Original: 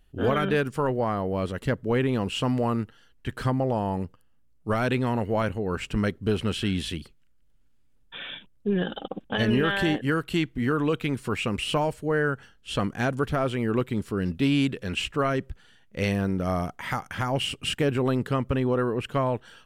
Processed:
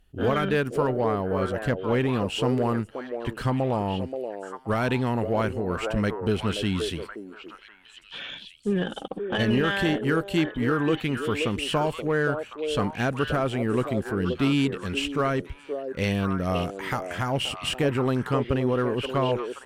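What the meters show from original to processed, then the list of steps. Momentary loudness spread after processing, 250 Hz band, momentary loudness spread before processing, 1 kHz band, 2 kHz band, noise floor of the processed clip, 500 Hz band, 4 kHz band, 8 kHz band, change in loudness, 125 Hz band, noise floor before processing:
9 LU, +0.5 dB, 8 LU, +1.0 dB, +0.5 dB, -50 dBFS, +1.5 dB, +0.5 dB, +0.5 dB, +0.5 dB, 0.0 dB, -59 dBFS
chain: added harmonics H 8 -33 dB, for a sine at -13.5 dBFS; delay with a stepping band-pass 0.527 s, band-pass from 460 Hz, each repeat 1.4 oct, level -3 dB

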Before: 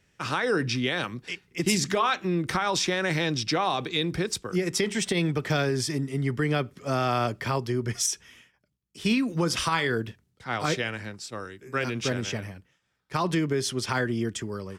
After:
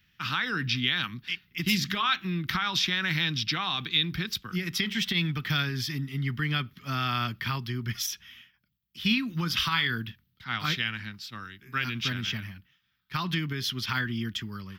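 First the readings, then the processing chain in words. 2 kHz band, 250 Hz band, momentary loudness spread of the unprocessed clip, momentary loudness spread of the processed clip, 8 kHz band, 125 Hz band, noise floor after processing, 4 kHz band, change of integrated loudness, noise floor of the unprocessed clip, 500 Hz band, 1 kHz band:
+1.0 dB, -4.0 dB, 9 LU, 9 LU, -8.0 dB, -1.5 dB, -73 dBFS, +3.5 dB, -1.5 dB, -71 dBFS, -16.0 dB, -4.5 dB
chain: EQ curve 220 Hz 0 dB, 520 Hz -20 dB, 1300 Hz +1 dB, 2400 Hz +3 dB, 3300 Hz +8 dB, 5100 Hz 0 dB, 8600 Hz -17 dB, 14000 Hz +13 dB; gain -1.5 dB

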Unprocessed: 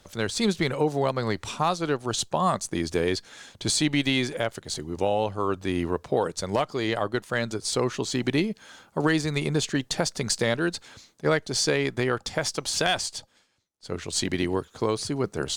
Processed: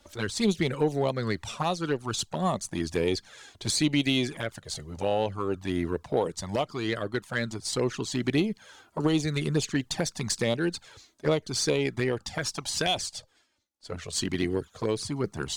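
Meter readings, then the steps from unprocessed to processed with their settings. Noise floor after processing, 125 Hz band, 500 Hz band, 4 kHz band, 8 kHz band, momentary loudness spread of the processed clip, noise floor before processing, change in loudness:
-64 dBFS, -1.0 dB, -2.5 dB, -2.5 dB, -3.0 dB, 7 LU, -61 dBFS, -2.5 dB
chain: envelope flanger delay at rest 3.6 ms, full sweep at -19.5 dBFS; added harmonics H 6 -29 dB, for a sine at -12 dBFS

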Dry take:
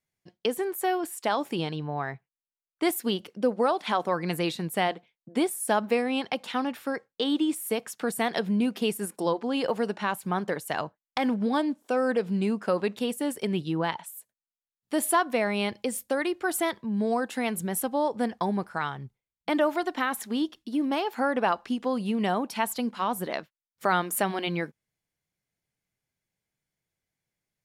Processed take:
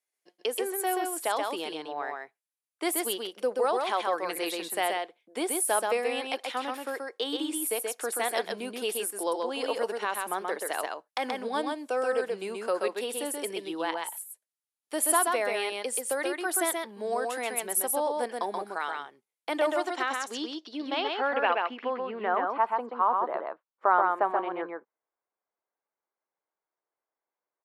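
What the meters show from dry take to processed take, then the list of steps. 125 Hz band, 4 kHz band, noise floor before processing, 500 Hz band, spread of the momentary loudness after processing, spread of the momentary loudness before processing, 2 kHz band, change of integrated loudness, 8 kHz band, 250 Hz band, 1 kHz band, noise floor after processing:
under -20 dB, -0.5 dB, under -85 dBFS, -1.0 dB, 9 LU, 7 LU, -0.5 dB, -1.5 dB, +4.5 dB, -9.5 dB, +1.0 dB, under -85 dBFS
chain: HPF 350 Hz 24 dB/oct; low-pass sweep 11000 Hz -> 1100 Hz, 19.45–22.66; on a send: echo 0.13 s -3.5 dB; on the sum: gain -2.5 dB

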